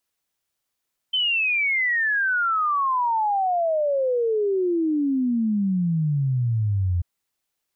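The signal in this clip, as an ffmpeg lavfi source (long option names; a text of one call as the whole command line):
ffmpeg -f lavfi -i "aevalsrc='0.112*clip(min(t,5.89-t)/0.01,0,1)*sin(2*PI*3100*5.89/log(85/3100)*(exp(log(85/3100)*t/5.89)-1))':duration=5.89:sample_rate=44100" out.wav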